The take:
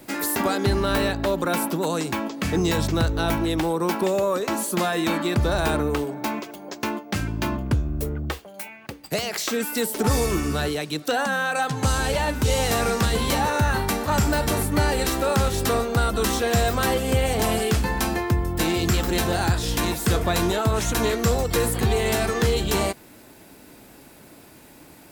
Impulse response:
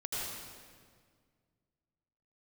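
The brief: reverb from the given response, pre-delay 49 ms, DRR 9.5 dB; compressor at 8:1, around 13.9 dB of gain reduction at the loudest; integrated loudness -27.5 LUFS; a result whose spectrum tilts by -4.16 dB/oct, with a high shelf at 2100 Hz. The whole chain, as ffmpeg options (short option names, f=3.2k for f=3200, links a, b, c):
-filter_complex "[0:a]highshelf=f=2.1k:g=3,acompressor=threshold=-31dB:ratio=8,asplit=2[a][b];[1:a]atrim=start_sample=2205,adelay=49[c];[b][c]afir=irnorm=-1:irlink=0,volume=-13dB[d];[a][d]amix=inputs=2:normalize=0,volume=6dB"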